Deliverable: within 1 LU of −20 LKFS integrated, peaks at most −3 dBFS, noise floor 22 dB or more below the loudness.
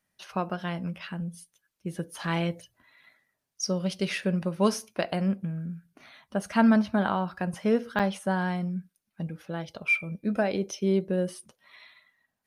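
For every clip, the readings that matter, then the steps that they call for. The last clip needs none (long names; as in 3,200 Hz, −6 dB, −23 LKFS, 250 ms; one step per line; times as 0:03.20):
number of dropouts 1; longest dropout 6.7 ms; integrated loudness −29.0 LKFS; sample peak −10.5 dBFS; target loudness −20.0 LKFS
→ repair the gap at 0:07.99, 6.7 ms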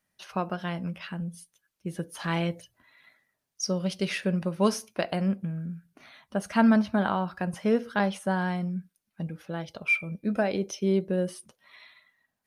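number of dropouts 0; integrated loudness −29.0 LKFS; sample peak −10.5 dBFS; target loudness −20.0 LKFS
→ level +9 dB
brickwall limiter −3 dBFS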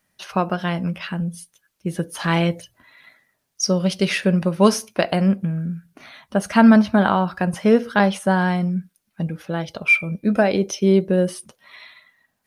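integrated loudness −20.0 LKFS; sample peak −3.0 dBFS; background noise floor −73 dBFS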